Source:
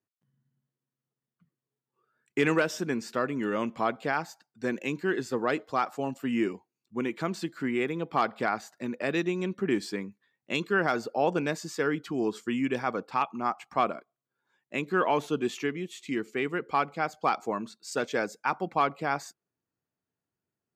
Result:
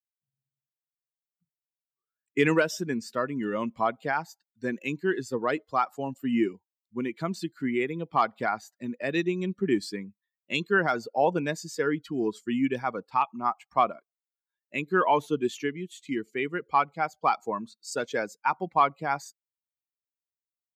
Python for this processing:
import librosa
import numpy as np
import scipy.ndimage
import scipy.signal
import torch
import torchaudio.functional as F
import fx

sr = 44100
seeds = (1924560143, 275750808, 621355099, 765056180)

y = fx.bin_expand(x, sr, power=1.5)
y = fx.dynamic_eq(y, sr, hz=960.0, q=3.7, threshold_db=-47.0, ratio=4.0, max_db=4)
y = y * librosa.db_to_amplitude(4.0)